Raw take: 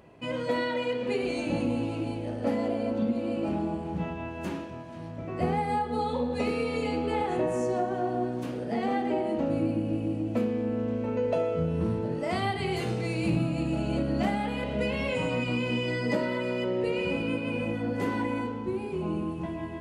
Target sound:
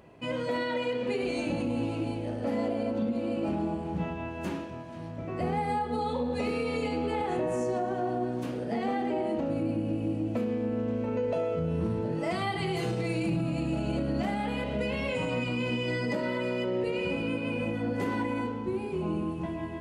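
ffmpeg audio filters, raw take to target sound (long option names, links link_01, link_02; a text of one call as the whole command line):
ffmpeg -i in.wav -filter_complex "[0:a]asettb=1/sr,asplit=3[link_01][link_02][link_03];[link_01]atrim=end=12.124[link_04];[link_02]atrim=start=12.12:end=13.44,asetpts=PTS-STARTPTS,afade=type=in:duration=0.004:curve=qsin,afade=type=out:start_time=1.316:duration=0.004:curve=qsin,aecho=1:1:6:0.54,atrim=end_sample=58212[link_05];[link_03]atrim=start=13.436[link_06];[link_04][link_05]acrossfade=duration=0.004:curve1=hsin:curve2=qsin[link_07];[link_07][link_06]acrossfade=duration=0.004:curve1=qsin:curve2=hsin,alimiter=limit=-21.5dB:level=0:latency=1:release=54" out.wav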